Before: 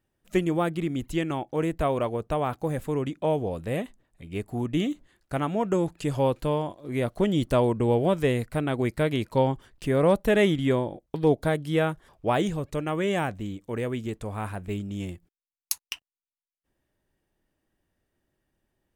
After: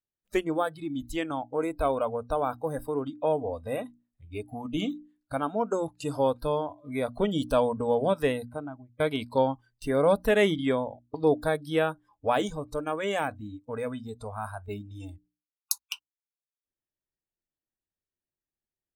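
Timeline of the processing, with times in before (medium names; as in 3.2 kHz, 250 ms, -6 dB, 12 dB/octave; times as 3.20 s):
8.25–9.00 s: studio fade out
whole clip: spectral noise reduction 22 dB; hum notches 60/120/180/240/300 Hz; dynamic bell 120 Hz, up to -8 dB, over -43 dBFS, Q 1.1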